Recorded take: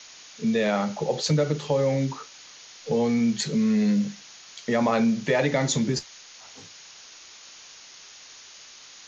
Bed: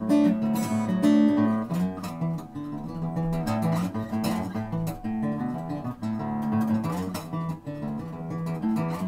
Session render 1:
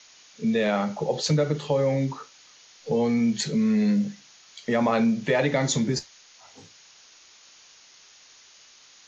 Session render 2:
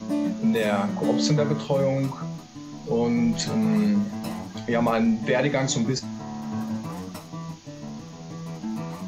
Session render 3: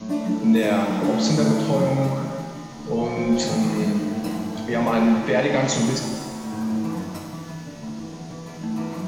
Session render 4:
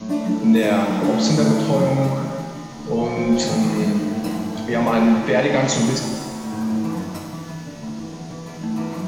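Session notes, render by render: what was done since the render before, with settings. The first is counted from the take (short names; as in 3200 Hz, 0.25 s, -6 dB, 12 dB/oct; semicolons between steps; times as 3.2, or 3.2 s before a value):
noise print and reduce 6 dB
add bed -5 dB
shimmer reverb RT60 1.6 s, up +7 st, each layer -8 dB, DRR 2 dB
gain +2.5 dB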